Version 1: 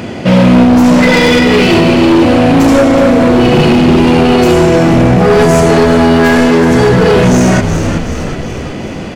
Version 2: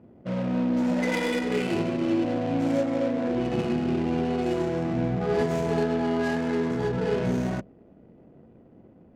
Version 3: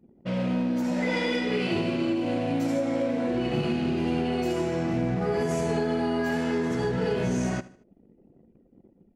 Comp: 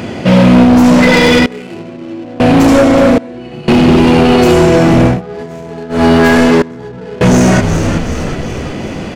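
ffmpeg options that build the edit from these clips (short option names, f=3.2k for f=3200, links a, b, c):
-filter_complex "[1:a]asplit=3[a][b][c];[0:a]asplit=5[d][e][f][g][h];[d]atrim=end=1.462[i];[a]atrim=start=1.458:end=2.402[j];[e]atrim=start=2.398:end=3.182[k];[2:a]atrim=start=3.178:end=3.682[l];[f]atrim=start=3.678:end=5.22[m];[b]atrim=start=5.06:end=6.05[n];[g]atrim=start=5.89:end=6.622[o];[c]atrim=start=6.618:end=7.212[p];[h]atrim=start=7.208[q];[i][j]acrossfade=d=0.004:c1=hsin:c2=hsin[r];[r][k]acrossfade=d=0.004:c1=hsin:c2=hsin[s];[s][l]acrossfade=d=0.004:c1=hsin:c2=hsin[t];[t][m]acrossfade=d=0.004:c1=hsin:c2=hsin[u];[u][n]acrossfade=d=0.16:c1=tri:c2=tri[v];[v][o]acrossfade=d=0.16:c1=tri:c2=tri[w];[w][p]acrossfade=d=0.004:c1=hsin:c2=hsin[x];[x][q]acrossfade=d=0.004:c1=hsin:c2=hsin"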